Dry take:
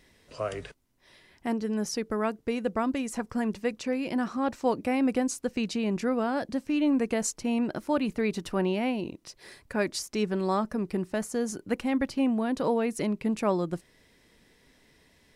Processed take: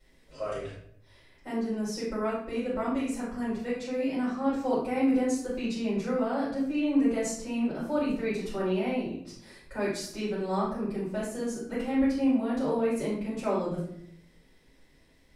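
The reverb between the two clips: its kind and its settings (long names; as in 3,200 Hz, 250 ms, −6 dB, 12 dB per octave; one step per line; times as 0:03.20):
rectangular room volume 110 cubic metres, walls mixed, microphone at 4.9 metres
level −17.5 dB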